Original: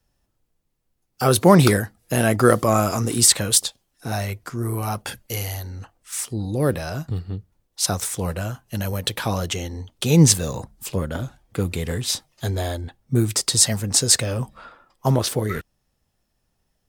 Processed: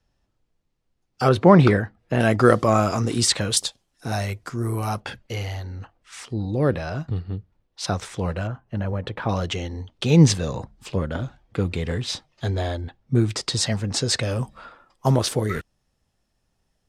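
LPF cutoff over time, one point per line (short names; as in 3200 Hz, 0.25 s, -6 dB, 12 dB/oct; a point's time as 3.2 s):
5700 Hz
from 1.29 s 2500 Hz
from 2.2 s 5300 Hz
from 3.57 s 8800 Hz
from 5 s 3700 Hz
from 8.47 s 1600 Hz
from 9.29 s 4300 Hz
from 14.23 s 9700 Hz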